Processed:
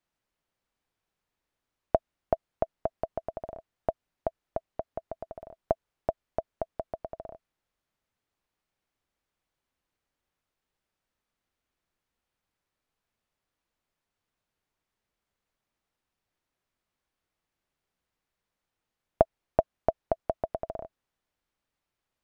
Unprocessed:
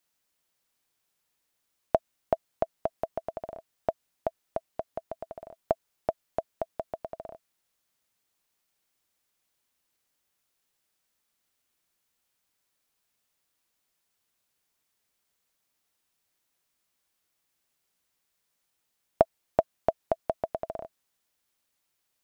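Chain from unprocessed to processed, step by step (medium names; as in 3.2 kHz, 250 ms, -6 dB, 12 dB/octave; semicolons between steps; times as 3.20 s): low-pass 1.7 kHz 6 dB/octave; bass shelf 75 Hz +9.5 dB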